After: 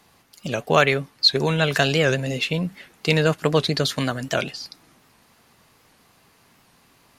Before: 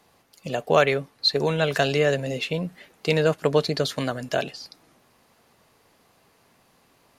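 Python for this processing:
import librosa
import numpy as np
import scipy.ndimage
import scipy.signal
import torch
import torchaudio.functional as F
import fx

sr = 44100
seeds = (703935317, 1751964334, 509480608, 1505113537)

y = fx.peak_eq(x, sr, hz=540.0, db=-6.0, octaves=1.3)
y = fx.record_warp(y, sr, rpm=78.0, depth_cents=160.0)
y = y * librosa.db_to_amplitude(5.0)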